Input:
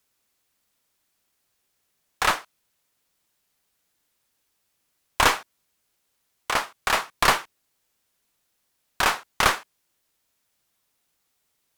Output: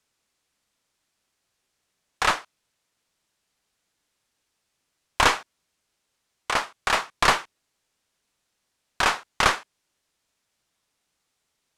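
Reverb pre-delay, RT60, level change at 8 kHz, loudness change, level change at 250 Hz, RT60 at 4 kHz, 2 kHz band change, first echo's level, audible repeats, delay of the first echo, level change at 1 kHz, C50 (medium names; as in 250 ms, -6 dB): no reverb, no reverb, -1.5 dB, 0.0 dB, 0.0 dB, no reverb, 0.0 dB, no echo, no echo, no echo, 0.0 dB, no reverb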